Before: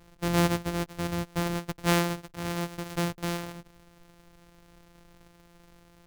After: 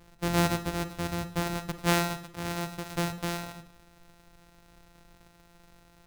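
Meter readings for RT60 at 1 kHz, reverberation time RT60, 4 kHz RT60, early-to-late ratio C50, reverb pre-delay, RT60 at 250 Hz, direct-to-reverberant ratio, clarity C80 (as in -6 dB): 0.60 s, 0.60 s, 0.55 s, 13.0 dB, 30 ms, 0.65 s, 11.0 dB, 17.0 dB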